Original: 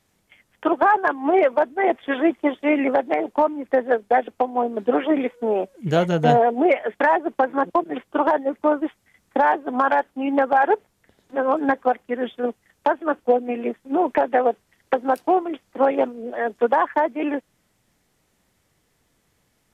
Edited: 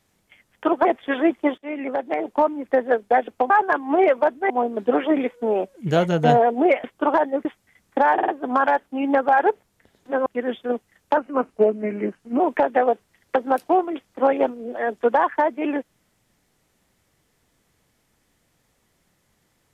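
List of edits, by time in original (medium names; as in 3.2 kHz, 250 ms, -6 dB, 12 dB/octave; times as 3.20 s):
0.85–1.85 s: move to 4.50 s
2.58–3.42 s: fade in, from -17 dB
6.84–7.97 s: delete
8.58–8.84 s: delete
9.52 s: stutter 0.05 s, 4 plays
11.50–12.00 s: delete
12.91–13.98 s: speed 87%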